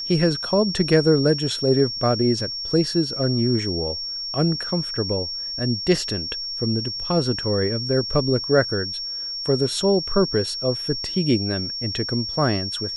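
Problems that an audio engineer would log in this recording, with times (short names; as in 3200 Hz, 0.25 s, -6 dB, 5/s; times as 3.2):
tone 5500 Hz -27 dBFS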